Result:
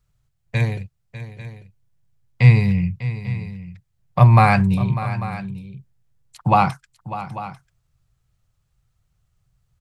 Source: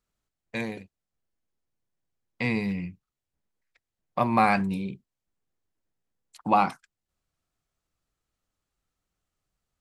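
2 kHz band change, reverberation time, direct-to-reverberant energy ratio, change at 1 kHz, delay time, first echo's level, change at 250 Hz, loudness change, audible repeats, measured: +6.0 dB, no reverb audible, no reverb audible, +6.0 dB, 598 ms, −14.0 dB, +6.5 dB, +8.5 dB, 2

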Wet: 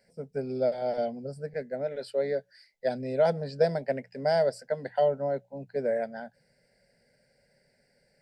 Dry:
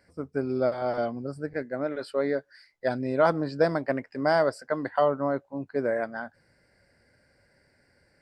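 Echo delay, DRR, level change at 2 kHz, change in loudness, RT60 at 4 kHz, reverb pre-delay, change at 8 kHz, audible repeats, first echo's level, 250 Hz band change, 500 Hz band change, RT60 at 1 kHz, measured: no echo audible, no reverb audible, −7.5 dB, −2.0 dB, no reverb audible, no reverb audible, can't be measured, no echo audible, no echo audible, −7.5 dB, −0.5 dB, no reverb audible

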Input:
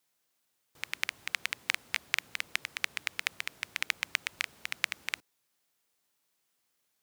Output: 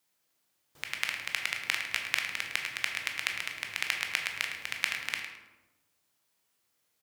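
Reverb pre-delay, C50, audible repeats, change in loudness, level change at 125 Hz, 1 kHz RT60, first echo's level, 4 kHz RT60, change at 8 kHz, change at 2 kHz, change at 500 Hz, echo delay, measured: 14 ms, 4.0 dB, 2, +2.0 dB, can't be measured, 1.0 s, −10.0 dB, 0.60 s, +1.5 dB, +2.5 dB, +2.5 dB, 107 ms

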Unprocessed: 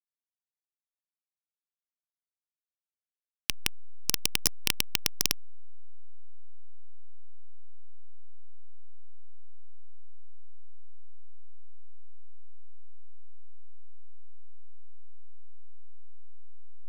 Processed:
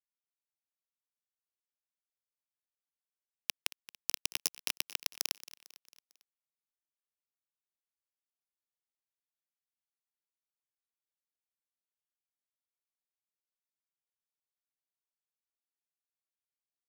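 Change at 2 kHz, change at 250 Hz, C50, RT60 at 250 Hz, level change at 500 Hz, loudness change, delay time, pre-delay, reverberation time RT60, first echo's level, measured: −7.0 dB, −15.5 dB, no reverb audible, no reverb audible, −9.5 dB, −7.0 dB, 225 ms, no reverb audible, no reverb audible, −17.5 dB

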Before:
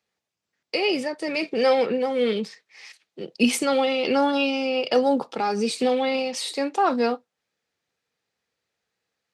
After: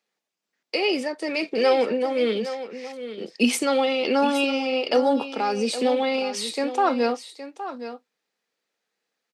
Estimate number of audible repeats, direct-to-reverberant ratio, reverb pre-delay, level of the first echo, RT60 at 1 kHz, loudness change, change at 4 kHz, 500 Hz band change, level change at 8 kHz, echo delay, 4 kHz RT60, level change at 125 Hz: 1, no reverb audible, no reverb audible, −12.0 dB, no reverb audible, 0.0 dB, +0.5 dB, 0.0 dB, +0.5 dB, 816 ms, no reverb audible, can't be measured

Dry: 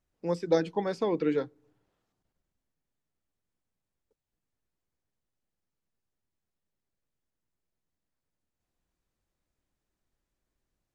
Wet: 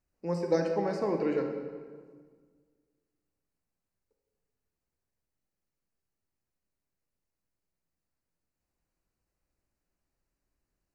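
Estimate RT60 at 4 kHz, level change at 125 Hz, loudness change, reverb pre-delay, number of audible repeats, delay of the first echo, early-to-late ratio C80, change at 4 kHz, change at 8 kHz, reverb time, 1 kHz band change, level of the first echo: 1.1 s, +1.0 dB, −1.5 dB, 22 ms, no echo audible, no echo audible, 6.5 dB, −5.0 dB, can't be measured, 1.6 s, −0.5 dB, no echo audible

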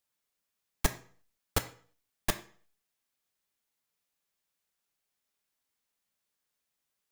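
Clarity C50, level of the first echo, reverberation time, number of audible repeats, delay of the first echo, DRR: 14.0 dB, no echo audible, 0.45 s, no echo audible, no echo audible, 7.0 dB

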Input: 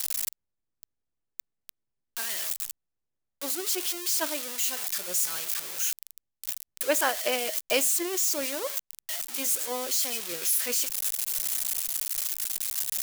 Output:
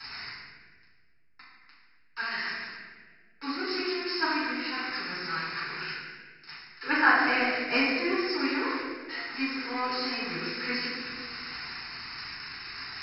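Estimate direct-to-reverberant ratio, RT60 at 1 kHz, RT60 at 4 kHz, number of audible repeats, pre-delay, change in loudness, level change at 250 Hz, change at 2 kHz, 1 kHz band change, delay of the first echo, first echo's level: −9.0 dB, 1.4 s, 1.1 s, no echo audible, 7 ms, −2.5 dB, +8.0 dB, +9.0 dB, +6.5 dB, no echo audible, no echo audible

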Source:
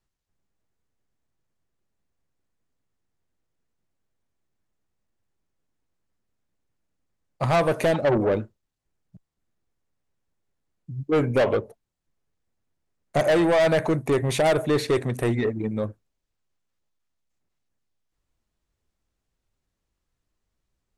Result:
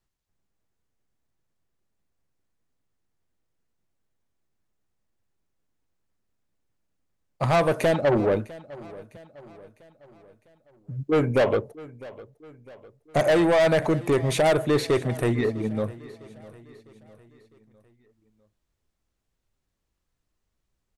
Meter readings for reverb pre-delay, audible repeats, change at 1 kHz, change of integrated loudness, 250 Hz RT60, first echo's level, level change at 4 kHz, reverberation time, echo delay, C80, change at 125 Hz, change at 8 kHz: no reverb audible, 3, 0.0 dB, 0.0 dB, no reverb audible, −20.0 dB, 0.0 dB, no reverb audible, 654 ms, no reverb audible, 0.0 dB, 0.0 dB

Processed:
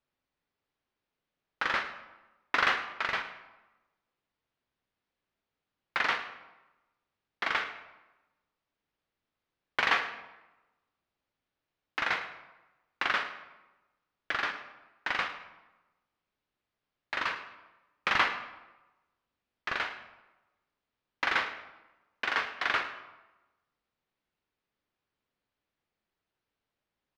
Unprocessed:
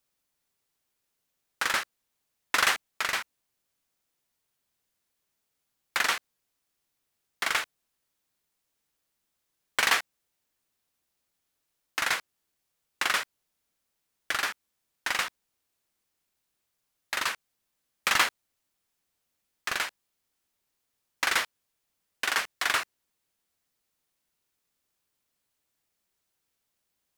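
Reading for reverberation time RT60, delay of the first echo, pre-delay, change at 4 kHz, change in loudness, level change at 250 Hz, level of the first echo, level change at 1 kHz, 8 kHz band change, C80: 1.1 s, 104 ms, 10 ms, −5.5 dB, −3.0 dB, +0.5 dB, −15.5 dB, −0.5 dB, −19.0 dB, 11.0 dB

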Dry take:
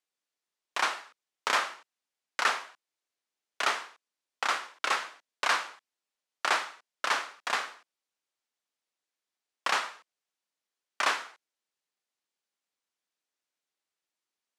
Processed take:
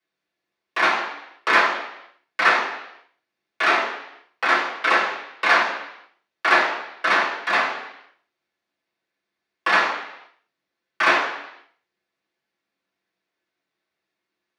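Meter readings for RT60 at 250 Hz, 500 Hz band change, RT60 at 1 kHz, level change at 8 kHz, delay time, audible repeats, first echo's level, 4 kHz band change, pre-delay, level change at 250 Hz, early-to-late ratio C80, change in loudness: 0.80 s, +13.0 dB, 0.80 s, −2.0 dB, no echo audible, no echo audible, no echo audible, +6.0 dB, 3 ms, +17.0 dB, 7.5 dB, +10.0 dB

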